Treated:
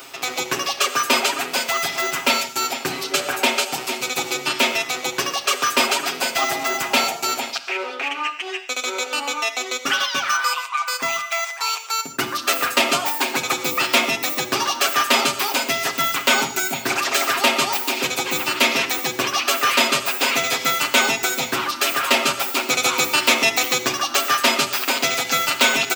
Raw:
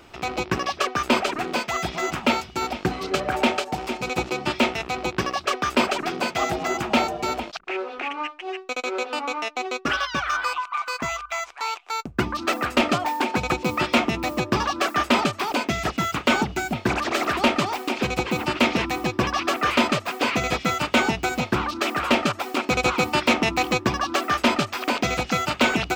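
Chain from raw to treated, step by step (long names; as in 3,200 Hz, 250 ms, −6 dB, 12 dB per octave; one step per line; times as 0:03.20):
high-pass filter 57 Hz
RIAA equalisation recording
mains-hum notches 60/120/180/240 Hz
comb filter 7.4 ms, depth 68%
reversed playback
upward compression, threshold −21 dBFS
reversed playback
reverb whose tail is shaped and stops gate 170 ms flat, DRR 8.5 dB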